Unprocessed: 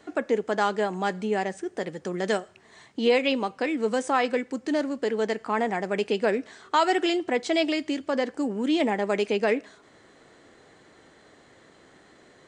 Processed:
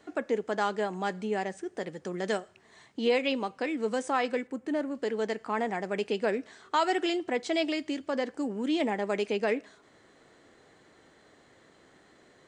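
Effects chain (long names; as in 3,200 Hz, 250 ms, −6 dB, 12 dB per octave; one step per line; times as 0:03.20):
0:04.47–0:04.95: parametric band 5,100 Hz −11.5 dB 1.3 octaves
level −4.5 dB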